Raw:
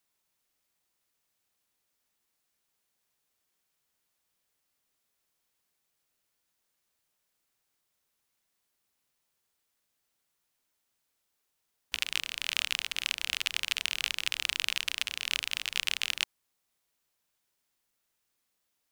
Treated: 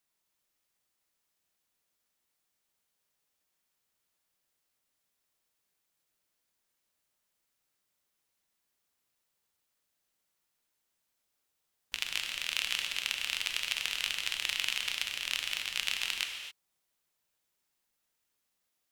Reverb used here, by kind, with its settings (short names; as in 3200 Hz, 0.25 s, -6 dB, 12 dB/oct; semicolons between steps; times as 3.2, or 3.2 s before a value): non-linear reverb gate 0.29 s flat, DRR 3.5 dB; gain -3 dB